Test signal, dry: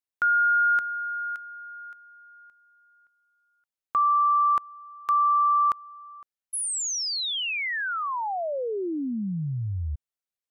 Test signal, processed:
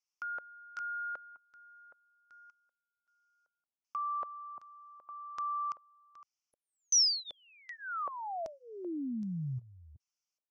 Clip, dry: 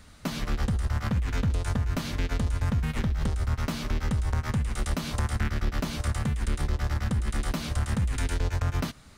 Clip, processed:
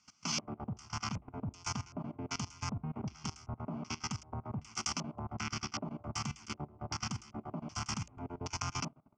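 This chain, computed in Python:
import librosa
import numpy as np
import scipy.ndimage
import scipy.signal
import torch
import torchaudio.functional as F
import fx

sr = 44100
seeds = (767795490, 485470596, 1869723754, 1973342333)

y = scipy.signal.sosfilt(scipy.signal.butter(4, 110.0, 'highpass', fs=sr, output='sos'), x)
y = fx.low_shelf(y, sr, hz=330.0, db=-8.5)
y = fx.level_steps(y, sr, step_db=19)
y = fx.fixed_phaser(y, sr, hz=2600.0, stages=8)
y = fx.filter_lfo_lowpass(y, sr, shape='square', hz=1.3, low_hz=570.0, high_hz=5700.0, q=3.7)
y = F.gain(torch.from_numpy(y), 3.0).numpy()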